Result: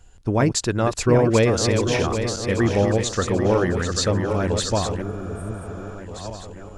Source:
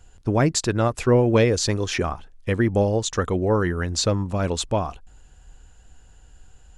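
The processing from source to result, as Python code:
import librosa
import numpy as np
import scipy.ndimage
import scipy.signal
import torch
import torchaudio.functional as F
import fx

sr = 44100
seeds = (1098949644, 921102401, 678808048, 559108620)

y = fx.reverse_delay_fb(x, sr, ms=394, feedback_pct=70, wet_db=-6.0)
y = fx.spec_repair(y, sr, seeds[0], start_s=5.05, length_s=0.88, low_hz=460.0, high_hz=8100.0, source='after')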